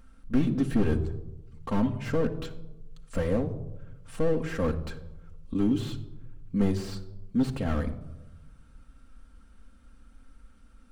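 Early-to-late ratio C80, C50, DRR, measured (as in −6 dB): 16.0 dB, 13.0 dB, 2.0 dB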